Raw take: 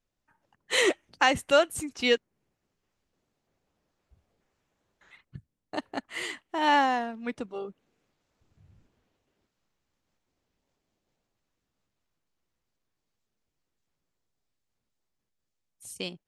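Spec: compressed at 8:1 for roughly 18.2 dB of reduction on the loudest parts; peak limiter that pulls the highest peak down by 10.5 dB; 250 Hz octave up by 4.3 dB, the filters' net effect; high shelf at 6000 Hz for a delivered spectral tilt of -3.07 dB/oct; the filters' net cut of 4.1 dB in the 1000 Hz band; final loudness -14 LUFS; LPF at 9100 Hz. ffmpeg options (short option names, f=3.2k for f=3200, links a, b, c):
-af "lowpass=9.1k,equalizer=f=250:t=o:g=5.5,equalizer=f=1k:t=o:g=-6,highshelf=f=6k:g=7.5,acompressor=threshold=-36dB:ratio=8,volume=29.5dB,alimiter=limit=-3dB:level=0:latency=1"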